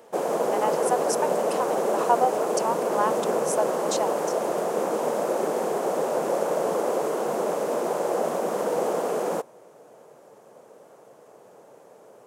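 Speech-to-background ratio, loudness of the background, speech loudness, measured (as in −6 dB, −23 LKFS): −3.0 dB, −26.0 LKFS, −29.0 LKFS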